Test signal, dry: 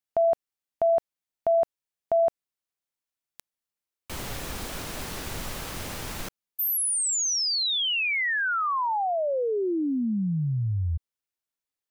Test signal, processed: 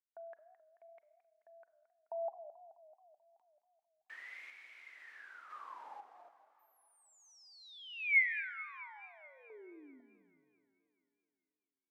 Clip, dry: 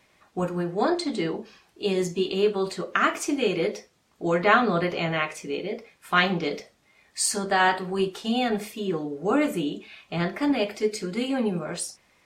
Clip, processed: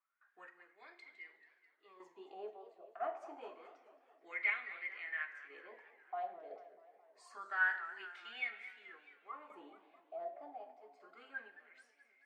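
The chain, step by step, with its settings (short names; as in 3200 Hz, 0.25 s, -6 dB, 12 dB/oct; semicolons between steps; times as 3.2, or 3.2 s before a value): HPF 260 Hz 24 dB/oct; gate with hold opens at -51 dBFS, hold 0.227 s, range -11 dB; random-step tremolo 2 Hz, depth 75%; wah 0.27 Hz 670–2200 Hz, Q 17; Schroeder reverb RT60 1 s, combs from 33 ms, DRR 13.5 dB; warbling echo 0.216 s, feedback 62%, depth 184 cents, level -15 dB; gain +3.5 dB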